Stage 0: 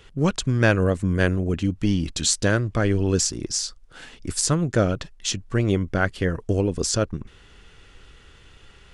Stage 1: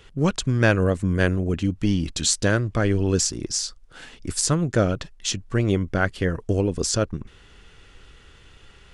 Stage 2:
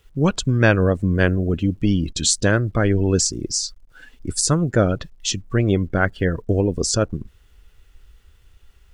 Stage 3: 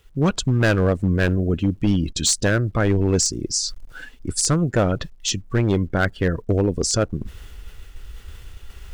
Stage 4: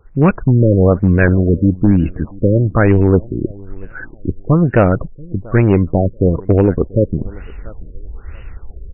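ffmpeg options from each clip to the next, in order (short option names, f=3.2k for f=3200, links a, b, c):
-af anull
-af "acrusher=bits=8:mix=0:aa=0.000001,afftdn=nr=15:nf=-36,volume=3dB"
-af "areverse,acompressor=mode=upward:threshold=-23dB:ratio=2.5,areverse,asoftclip=type=hard:threshold=-12dB"
-af "aecho=1:1:685|1370:0.0668|0.0167,afftfilt=real='re*lt(b*sr/1024,580*pow(3000/580,0.5+0.5*sin(2*PI*1.1*pts/sr)))':imag='im*lt(b*sr/1024,580*pow(3000/580,0.5+0.5*sin(2*PI*1.1*pts/sr)))':win_size=1024:overlap=0.75,volume=8dB"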